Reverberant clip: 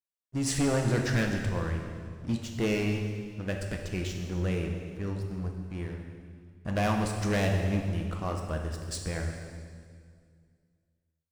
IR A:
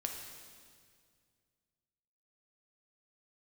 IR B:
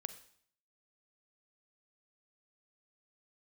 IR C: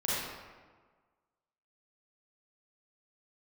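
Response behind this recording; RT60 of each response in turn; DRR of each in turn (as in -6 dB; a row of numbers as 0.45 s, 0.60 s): A; 2.1 s, 0.60 s, 1.5 s; 2.0 dB, 11.0 dB, -9.0 dB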